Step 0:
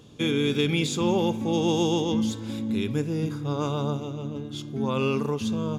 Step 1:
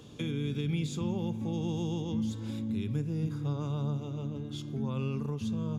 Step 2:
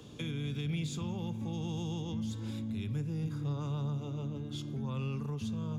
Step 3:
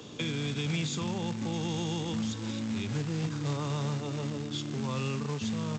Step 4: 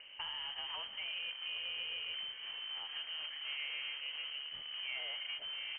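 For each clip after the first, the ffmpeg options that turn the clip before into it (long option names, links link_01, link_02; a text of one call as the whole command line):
ffmpeg -i in.wav -filter_complex "[0:a]acrossover=split=180[link_01][link_02];[link_02]acompressor=threshold=-41dB:ratio=4[link_03];[link_01][link_03]amix=inputs=2:normalize=0" out.wav
ffmpeg -i in.wav -filter_complex "[0:a]acrossover=split=170|750[link_01][link_02][link_03];[link_02]alimiter=level_in=12dB:limit=-24dB:level=0:latency=1:release=214,volume=-12dB[link_04];[link_01][link_04][link_03]amix=inputs=3:normalize=0,asoftclip=type=tanh:threshold=-25.5dB" out.wav
ffmpeg -i in.wav -af "aresample=16000,acrusher=bits=4:mode=log:mix=0:aa=0.000001,aresample=44100,highpass=frequency=250:poles=1,volume=8dB" out.wav
ffmpeg -i in.wav -filter_complex "[0:a]acrossover=split=270 2500:gain=0.158 1 0.0631[link_01][link_02][link_03];[link_01][link_02][link_03]amix=inputs=3:normalize=0,lowpass=frequency=2800:width_type=q:width=0.5098,lowpass=frequency=2800:width_type=q:width=0.6013,lowpass=frequency=2800:width_type=q:width=0.9,lowpass=frequency=2800:width_type=q:width=2.563,afreqshift=-3300,volume=-3.5dB" out.wav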